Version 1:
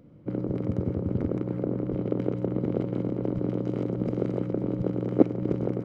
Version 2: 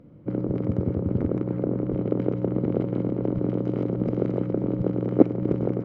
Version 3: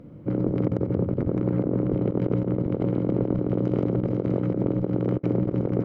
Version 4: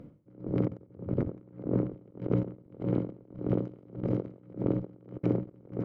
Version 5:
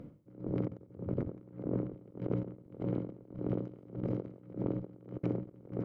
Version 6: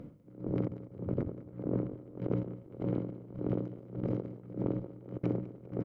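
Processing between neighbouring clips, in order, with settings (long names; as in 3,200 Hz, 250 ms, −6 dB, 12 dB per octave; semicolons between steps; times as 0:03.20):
low-pass filter 2,500 Hz 6 dB per octave; level +3 dB
compressor whose output falls as the input rises −27 dBFS, ratio −0.5; level +3 dB
tremolo with a sine in dB 1.7 Hz, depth 29 dB; level −2 dB
downward compressor 2 to 1, threshold −34 dBFS, peak gain reduction 7.5 dB
repeating echo 199 ms, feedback 47%, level −17 dB; level +1.5 dB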